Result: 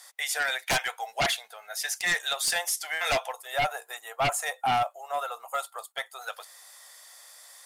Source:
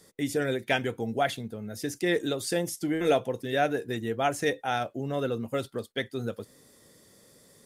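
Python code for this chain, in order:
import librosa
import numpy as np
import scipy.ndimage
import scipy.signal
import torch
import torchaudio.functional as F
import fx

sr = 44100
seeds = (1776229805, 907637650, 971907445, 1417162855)

y = scipy.signal.sosfilt(scipy.signal.ellip(4, 1.0, 60, 720.0, 'highpass', fs=sr, output='sos'), x)
y = fx.spec_box(y, sr, start_s=3.33, length_s=2.89, low_hz=1400.0, high_hz=6500.0, gain_db=-10)
y = fx.fold_sine(y, sr, drive_db=14, ceiling_db=-13.0)
y = y * librosa.db_to_amplitude(-7.5)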